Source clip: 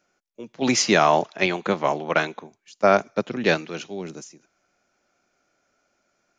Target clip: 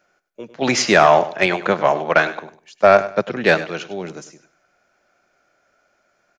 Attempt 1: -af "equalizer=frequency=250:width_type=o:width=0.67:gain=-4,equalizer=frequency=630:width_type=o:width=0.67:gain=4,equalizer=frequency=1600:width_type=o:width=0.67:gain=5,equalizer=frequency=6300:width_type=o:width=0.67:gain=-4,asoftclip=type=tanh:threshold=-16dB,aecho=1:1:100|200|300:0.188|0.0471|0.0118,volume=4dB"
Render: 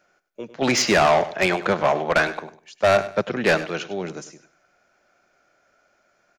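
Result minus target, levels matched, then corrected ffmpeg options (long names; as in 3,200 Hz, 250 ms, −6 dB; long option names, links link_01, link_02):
soft clipping: distortion +12 dB
-af "equalizer=frequency=250:width_type=o:width=0.67:gain=-4,equalizer=frequency=630:width_type=o:width=0.67:gain=4,equalizer=frequency=1600:width_type=o:width=0.67:gain=5,equalizer=frequency=6300:width_type=o:width=0.67:gain=-4,asoftclip=type=tanh:threshold=-5dB,aecho=1:1:100|200|300:0.188|0.0471|0.0118,volume=4dB"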